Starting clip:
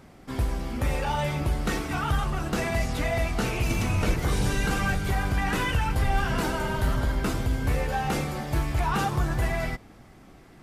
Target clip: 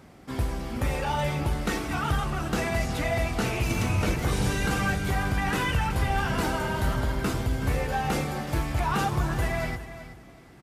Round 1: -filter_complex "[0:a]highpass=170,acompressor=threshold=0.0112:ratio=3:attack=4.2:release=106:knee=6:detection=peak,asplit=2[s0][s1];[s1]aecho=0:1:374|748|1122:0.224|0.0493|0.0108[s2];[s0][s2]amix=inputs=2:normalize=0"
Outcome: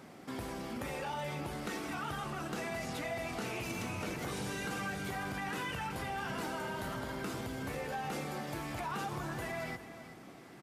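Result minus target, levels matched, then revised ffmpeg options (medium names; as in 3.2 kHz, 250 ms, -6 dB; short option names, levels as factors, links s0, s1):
compression: peak gain reduction +12.5 dB; 125 Hz band -5.0 dB
-filter_complex "[0:a]highpass=49,asplit=2[s0][s1];[s1]aecho=0:1:374|748|1122:0.224|0.0493|0.0108[s2];[s0][s2]amix=inputs=2:normalize=0"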